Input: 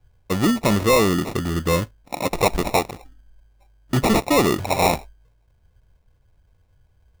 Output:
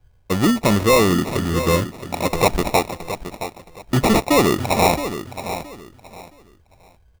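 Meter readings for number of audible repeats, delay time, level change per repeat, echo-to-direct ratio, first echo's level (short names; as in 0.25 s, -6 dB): 2, 0.67 s, -12.5 dB, -10.5 dB, -11.0 dB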